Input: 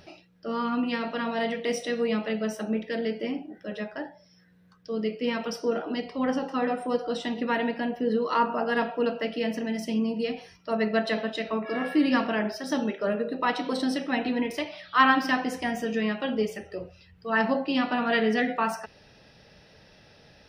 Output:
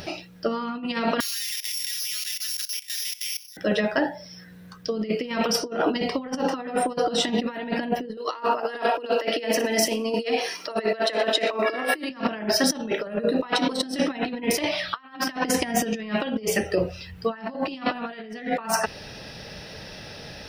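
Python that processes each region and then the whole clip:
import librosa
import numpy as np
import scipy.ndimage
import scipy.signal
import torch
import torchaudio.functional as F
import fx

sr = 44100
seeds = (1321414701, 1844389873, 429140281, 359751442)

y = fx.chain(x, sr, fx.sample_sort(block=8),
    fx.cheby2_highpass(hz=810.0, order=4, stop_db=50),
    fx.level_steps(step_db=16), at=(1.2, 3.57))
y = fx.chain(y, sr, fx.highpass(hz=310.0, slope=24),
    fx.echo_wet_highpass(ms=60, feedback_pct=37, hz=5200.0, wet_db=-8.0),
    fx.band_squash(depth_pct=70), at=(8.17, 12.1))
y = fx.high_shelf(y, sr, hz=5800.0, db=7.5)
y = fx.over_compress(y, sr, threshold_db=-33.0, ratio=-0.5)
y = y * librosa.db_to_amplitude(8.0)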